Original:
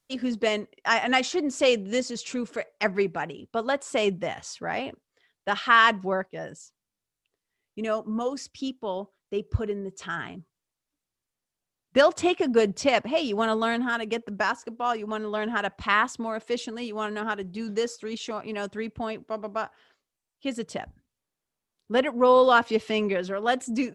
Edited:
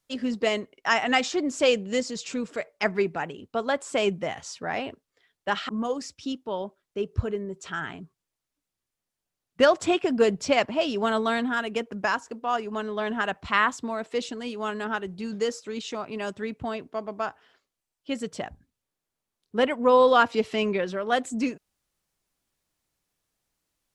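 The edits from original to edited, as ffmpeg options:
ffmpeg -i in.wav -filter_complex "[0:a]asplit=2[link_01][link_02];[link_01]atrim=end=5.692[link_03];[link_02]atrim=start=8.048[link_04];[link_03][link_04]acrossfade=duration=0.004:curve1=hsin:curve2=hsin" out.wav

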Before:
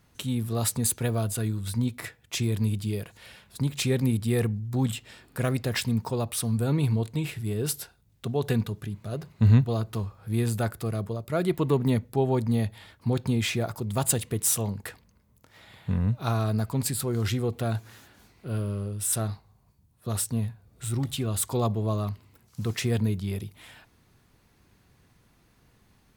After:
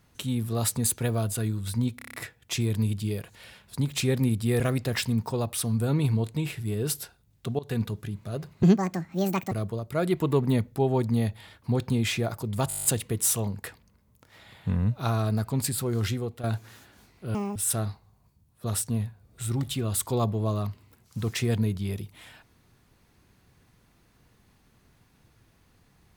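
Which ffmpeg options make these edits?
ffmpeg -i in.wav -filter_complex "[0:a]asplit=22[link_01][link_02][link_03][link_04][link_05][link_06][link_07][link_08][link_09][link_10][link_11][link_12][link_13][link_14][link_15][link_16][link_17][link_18][link_19][link_20][link_21][link_22];[link_01]atrim=end=1.992[link_23];[link_02]atrim=start=1.958:end=1.992[link_24];[link_03]atrim=start=1.958:end=1.992[link_25];[link_04]atrim=start=1.958:end=1.992[link_26];[link_05]atrim=start=1.958:end=1.992[link_27];[link_06]atrim=start=1.958:end=1.992[link_28];[link_07]atrim=start=1.958:end=4.422[link_29];[link_08]atrim=start=5.388:end=8.38,asetpts=PTS-STARTPTS,afade=type=out:start_time=2.988:duration=0.004:curve=hsin:silence=0.0944061[link_30];[link_09]atrim=start=8.38:end=9.424,asetpts=PTS-STARTPTS,afade=type=in:duration=0.26:silence=0.0944061[link_31];[link_10]atrim=start=9.42:end=10.89,asetpts=PTS-STARTPTS,asetrate=73206,aresample=44100,atrim=end_sample=39052,asetpts=PTS-STARTPTS[link_32];[link_11]atrim=start=10.886:end=14.082[link_33];[link_12]atrim=start=14.058:end=14.082[link_34];[link_13]atrim=start=14.058:end=14.082[link_35];[link_14]atrim=start=14.058:end=14.082[link_36];[link_15]atrim=start=14.058:end=14.082[link_37];[link_16]atrim=start=14.058:end=14.082[link_38];[link_17]atrim=start=14.058:end=14.082[link_39];[link_18]atrim=start=14.058:end=14.082[link_40];[link_19]atrim=start=14.058:end=17.65,asetpts=PTS-STARTPTS,afade=type=out:start_time=3.182:duration=0.41:silence=0.281838[link_41];[link_20]atrim=start=17.65:end=18.564,asetpts=PTS-STARTPTS,afade=type=in:duration=0.004:curve=hsin:silence=0.281838[link_42];[link_21]atrim=start=18.56:end=18.98,asetpts=PTS-STARTPTS,asetrate=87759,aresample=44100[link_43];[link_22]atrim=start=18.976[link_44];[link_23][link_24]acrossfade=duration=0.004:curve1=hsin:curve2=hsin[link_45];[link_45][link_25]acrossfade=duration=0.004:curve1=hsin:curve2=hsin[link_46];[link_46][link_26]acrossfade=duration=0.004:curve1=hsin:curve2=hsin[link_47];[link_47][link_27]acrossfade=duration=0.004:curve1=hsin:curve2=hsin[link_48];[link_48][link_28]acrossfade=duration=0.004:curve1=hsin:curve2=hsin[link_49];[link_49][link_29]acrossfade=duration=0.004:curve1=hsin:curve2=hsin[link_50];[link_30][link_31]concat=n=2:v=0:a=1[link_51];[link_50][link_51]acrossfade=duration=0.004:curve1=hsin:curve2=hsin[link_52];[link_52][link_32]acrossfade=duration=0.004:curve1=hsin:curve2=hsin[link_53];[link_53][link_33]acrossfade=duration=0.004:curve1=hsin:curve2=hsin[link_54];[link_54][link_34]acrossfade=duration=0.004:curve1=hsin:curve2=hsin[link_55];[link_55][link_35]acrossfade=duration=0.004:curve1=hsin:curve2=hsin[link_56];[link_56][link_36]acrossfade=duration=0.004:curve1=hsin:curve2=hsin[link_57];[link_57][link_37]acrossfade=duration=0.004:curve1=hsin:curve2=hsin[link_58];[link_58][link_38]acrossfade=duration=0.004:curve1=hsin:curve2=hsin[link_59];[link_59][link_39]acrossfade=duration=0.004:curve1=hsin:curve2=hsin[link_60];[link_60][link_40]acrossfade=duration=0.004:curve1=hsin:curve2=hsin[link_61];[link_41][link_42]concat=n=2:v=0:a=1[link_62];[link_61][link_62]acrossfade=duration=0.004:curve1=hsin:curve2=hsin[link_63];[link_63][link_43]acrossfade=duration=0.004:curve1=hsin:curve2=hsin[link_64];[link_64][link_44]acrossfade=duration=0.004:curve1=hsin:curve2=hsin" out.wav

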